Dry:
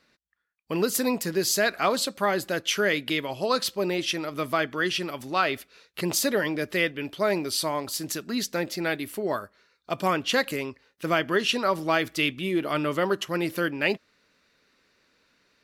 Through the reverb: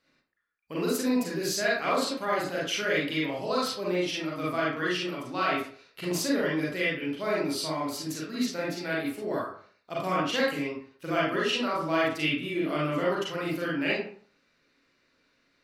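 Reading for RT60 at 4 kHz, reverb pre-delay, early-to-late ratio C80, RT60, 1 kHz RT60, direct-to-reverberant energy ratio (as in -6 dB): 0.30 s, 34 ms, 6.5 dB, 0.50 s, 0.50 s, -6.5 dB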